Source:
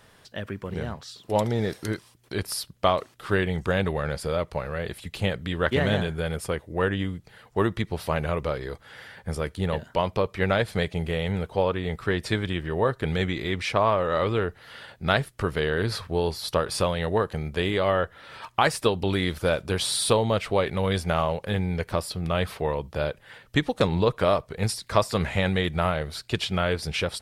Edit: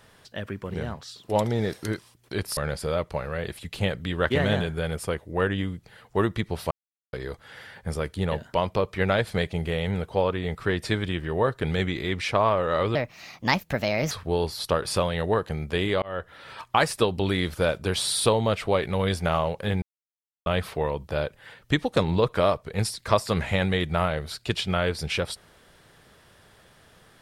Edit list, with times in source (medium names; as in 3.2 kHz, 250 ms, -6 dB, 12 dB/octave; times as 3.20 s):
2.57–3.98 s: delete
8.12–8.54 s: mute
14.36–15.95 s: speed 137%
17.86–18.16 s: fade in
21.66–22.30 s: mute